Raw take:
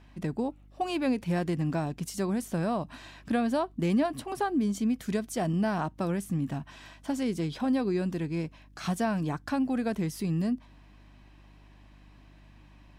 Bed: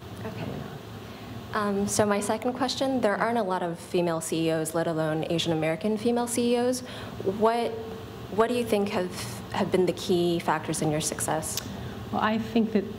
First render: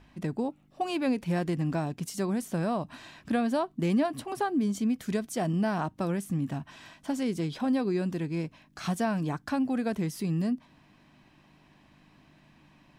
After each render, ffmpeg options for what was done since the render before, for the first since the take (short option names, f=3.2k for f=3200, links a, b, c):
-af "bandreject=f=50:t=h:w=4,bandreject=f=100:t=h:w=4"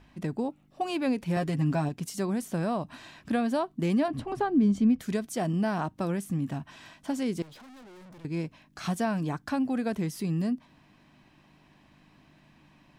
-filter_complex "[0:a]asettb=1/sr,asplit=3[a][b][c];[a]atrim=end=1.364[d];[b]atrim=start=1.36:end=1.89,asetpts=PTS-STARTPTS,afade=t=in:d=0.004:c=qsin,afade=t=out:st=0.526:d=0.004:c=qsin,aecho=1:1:7.3:0.65,atrim=end_sample=23373[e];[c]atrim=start=1.886[f];[d][e]acrossfade=d=0.004:c1=hsin:c2=qsin[g];[g][f]acrossfade=d=0.004:c1=qsin:c2=hsin,asettb=1/sr,asplit=3[h][i][j];[h]atrim=end=4.084[k];[i]atrim=start=4.08:end=5,asetpts=PTS-STARTPTS,afade=t=in:d=0.004:c=qsin,afade=t=out:st=0.916:d=0.004:c=qsin,aemphasis=mode=reproduction:type=bsi[l];[j]atrim=start=4.996[m];[k][l]acrossfade=d=0.004:c1=hsin:c2=qsin[n];[n][m]acrossfade=d=0.004:c1=qsin:c2=hsin,asettb=1/sr,asplit=3[o][p][q];[o]atrim=end=7.424[r];[p]atrim=start=7.42:end=8.25,asetpts=PTS-STARTPTS,afade=t=in:d=0.004:c=qsin,afade=t=out:st=0.826:d=0.004:c=qsin,aeval=exprs='(tanh(282*val(0)+0.15)-tanh(0.15))/282':c=same[s];[q]atrim=start=8.246[t];[r][s]acrossfade=d=0.004:c1=hsin:c2=qsin[u];[u][t]acrossfade=d=0.004:c1=qsin:c2=hsin"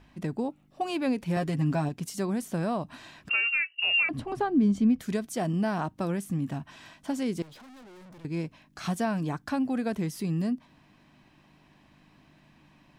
-filter_complex "[0:a]asettb=1/sr,asplit=3[a][b][c];[a]atrim=end=3.294[d];[b]atrim=start=3.29:end=4.09,asetpts=PTS-STARTPTS,afade=t=in:d=0.004:c=qsin,afade=t=out:st=0.796:d=0.004:c=qsin,lowpass=f=2.6k:t=q:w=0.5098,lowpass=f=2.6k:t=q:w=0.6013,lowpass=f=2.6k:t=q:w=0.9,lowpass=f=2.6k:t=q:w=2.563,afreqshift=-3000[e];[c]atrim=start=4.086[f];[d][e]acrossfade=d=0.004:c1=hsin:c2=qsin[g];[g][f]acrossfade=d=0.004:c1=qsin:c2=hsin"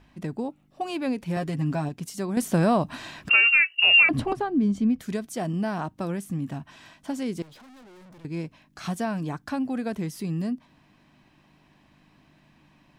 -filter_complex "[0:a]asplit=3[a][b][c];[a]atrim=end=2.372[d];[b]atrim=start=2.368:end=4.332,asetpts=PTS-STARTPTS,volume=8.5dB[e];[c]atrim=start=4.328[f];[d][e]acrossfade=d=0.004:c1=hsin:c2=hsin[g];[g][f]acrossfade=d=0.004:c1=hsin:c2=hsin"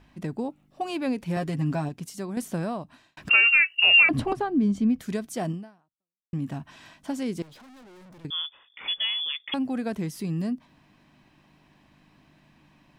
-filter_complex "[0:a]asettb=1/sr,asplit=3[a][b][c];[a]atrim=end=8.304[d];[b]atrim=start=8.3:end=9.54,asetpts=PTS-STARTPTS,afade=t=in:d=0.004:c=qsin,afade=t=out:st=1.236:d=0.004:c=qsin,lowpass=f=3.1k:t=q:w=0.5098,lowpass=f=3.1k:t=q:w=0.6013,lowpass=f=3.1k:t=q:w=0.9,lowpass=f=3.1k:t=q:w=2.563,afreqshift=-3600[e];[c]atrim=start=9.536[f];[d][e]acrossfade=d=0.004:c1=hsin:c2=qsin[g];[g][f]acrossfade=d=0.004:c1=qsin:c2=hsin,asplit=3[h][i][j];[h]atrim=end=3.17,asetpts=PTS-STARTPTS,afade=t=out:st=1.71:d=1.46[k];[i]atrim=start=3.17:end=6.33,asetpts=PTS-STARTPTS,afade=t=in:d=0.004:c=hsin,afade=t=out:st=2.34:d=0.82:c=exp[l];[j]atrim=start=6.33,asetpts=PTS-STARTPTS,afade=t=in:d=0.004:c=hsin[m];[k][l][m]concat=n=3:v=0:a=1"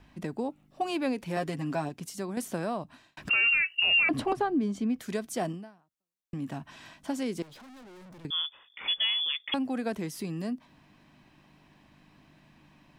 -filter_complex "[0:a]acrossover=split=270[a][b];[a]acompressor=threshold=-39dB:ratio=6[c];[b]alimiter=limit=-17.5dB:level=0:latency=1:release=30[d];[c][d]amix=inputs=2:normalize=0"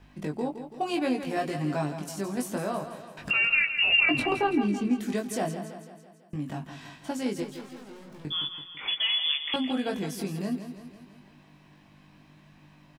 -filter_complex "[0:a]asplit=2[a][b];[b]adelay=20,volume=-3dB[c];[a][c]amix=inputs=2:normalize=0,aecho=1:1:166|332|498|664|830|996:0.316|0.171|0.0922|0.0498|0.0269|0.0145"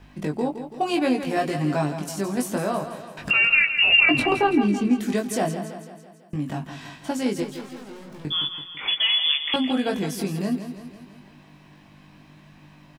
-af "volume=5.5dB"